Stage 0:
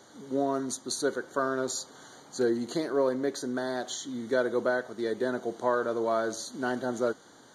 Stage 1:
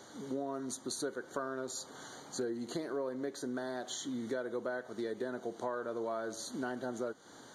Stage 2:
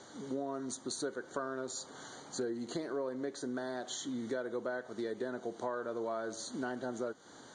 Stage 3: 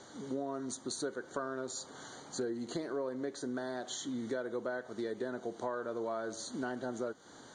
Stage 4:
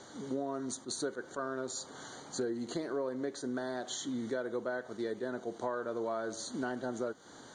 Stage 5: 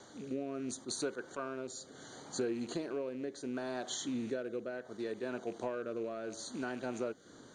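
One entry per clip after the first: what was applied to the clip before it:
dynamic bell 5.2 kHz, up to -4 dB, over -47 dBFS, Q 1.1; compression 4:1, threshold -37 dBFS, peak gain reduction 13.5 dB; trim +1 dB
steep low-pass 9.2 kHz 72 dB/octave
bass shelf 77 Hz +5 dB
attacks held to a fixed rise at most 340 dB/s; trim +1.5 dB
rattle on loud lows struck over -46 dBFS, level -44 dBFS; rotary cabinet horn 0.7 Hz

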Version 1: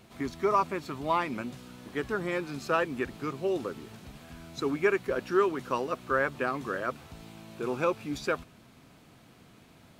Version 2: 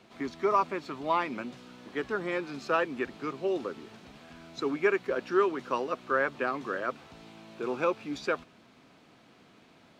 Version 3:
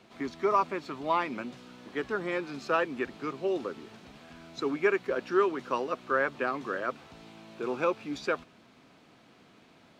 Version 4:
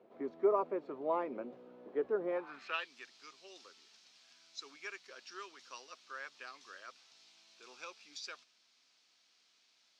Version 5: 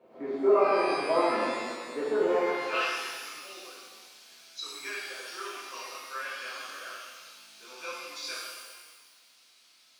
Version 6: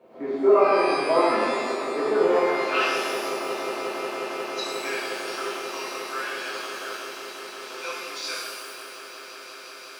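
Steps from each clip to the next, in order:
three-band isolator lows -12 dB, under 190 Hz, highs -15 dB, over 6.5 kHz
no audible change
band-pass sweep 490 Hz -> 5.4 kHz, 2.27–2.91 s; trim +2 dB
pitch-shifted reverb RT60 1.5 s, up +12 st, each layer -8 dB, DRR -9.5 dB
echo with a slow build-up 179 ms, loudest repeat 8, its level -17.5 dB; trim +5 dB

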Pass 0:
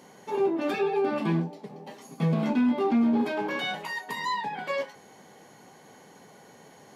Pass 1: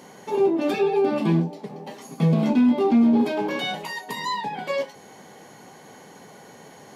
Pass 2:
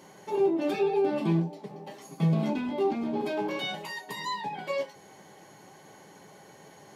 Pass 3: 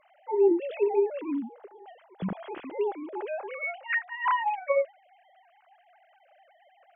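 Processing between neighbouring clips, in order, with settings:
dynamic bell 1.5 kHz, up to -7 dB, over -47 dBFS, Q 0.97; trim +6 dB
comb of notches 240 Hz; trim -4.5 dB
formants replaced by sine waves

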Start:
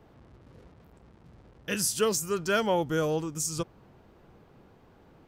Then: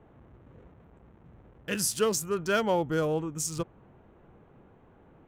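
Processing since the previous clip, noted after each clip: local Wiener filter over 9 samples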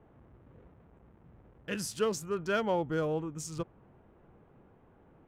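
treble shelf 6.5 kHz -12 dB; trim -3.5 dB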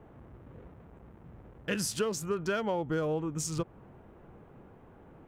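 compression 6:1, threshold -34 dBFS, peak gain reduction 10 dB; trim +6.5 dB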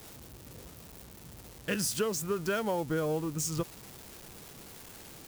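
zero-crossing glitches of -33.5 dBFS

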